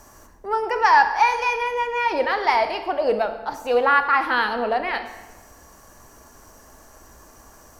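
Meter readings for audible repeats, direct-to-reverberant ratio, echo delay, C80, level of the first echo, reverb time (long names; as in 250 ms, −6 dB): no echo audible, 8.0 dB, no echo audible, 11.5 dB, no echo audible, 1.1 s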